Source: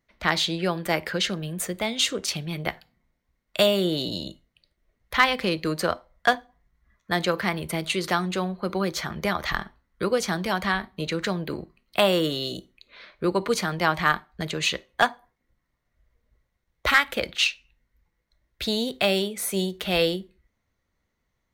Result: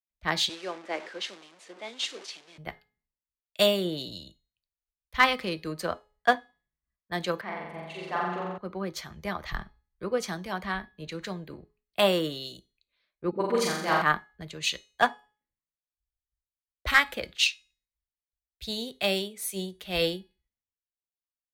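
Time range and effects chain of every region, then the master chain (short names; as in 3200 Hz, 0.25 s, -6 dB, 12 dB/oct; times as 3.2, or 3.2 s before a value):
0.49–2.58 delta modulation 64 kbps, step -26 dBFS + HPF 280 Hz 24 dB/oct + air absorption 100 m
7.41–8.58 band-pass 820 Hz, Q 0.61 + flutter echo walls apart 7.6 m, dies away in 1.5 s
13.31–14.02 HPF 180 Hz + dispersion highs, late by 43 ms, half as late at 370 Hz + flutter echo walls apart 7.4 m, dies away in 1.1 s
whole clip: notch 1400 Hz, Q 22; de-hum 421.3 Hz, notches 28; three-band expander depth 100%; gain -7 dB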